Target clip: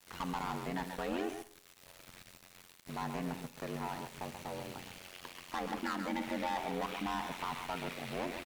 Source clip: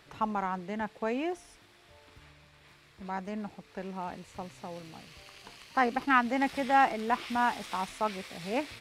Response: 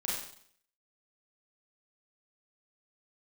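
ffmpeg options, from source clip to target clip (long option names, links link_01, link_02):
-filter_complex "[0:a]aemphasis=mode=production:type=75fm,acrossover=split=3700[link_01][link_02];[link_02]acompressor=threshold=-52dB:ratio=4:attack=1:release=60[link_03];[link_01][link_03]amix=inputs=2:normalize=0,equalizer=frequency=4800:width_type=o:width=0.25:gain=-5.5,acrossover=split=160|2400[link_04][link_05][link_06];[link_04]acompressor=threshold=-57dB:ratio=4[link_07];[link_05]acompressor=threshold=-30dB:ratio=4[link_08];[link_06]acompressor=threshold=-54dB:ratio=4[link_09];[link_07][link_08][link_09]amix=inputs=3:normalize=0,acrossover=split=4300[link_10][link_11];[link_10]asoftclip=type=tanh:threshold=-36dB[link_12];[link_11]alimiter=level_in=31dB:limit=-24dB:level=0:latency=1:release=32,volume=-31dB[link_13];[link_12][link_13]amix=inputs=2:normalize=0,aecho=1:1:138:0.422,aeval=exprs='val(0)*sin(2*PI*43*n/s)':channel_layout=same,aeval=exprs='val(0)*gte(abs(val(0)),0.00251)':channel_layout=same,asplit=2[link_14][link_15];[1:a]atrim=start_sample=2205[link_16];[link_15][link_16]afir=irnorm=-1:irlink=0,volume=-16.5dB[link_17];[link_14][link_17]amix=inputs=2:normalize=0,asetrate=45938,aresample=44100,volume=4.5dB"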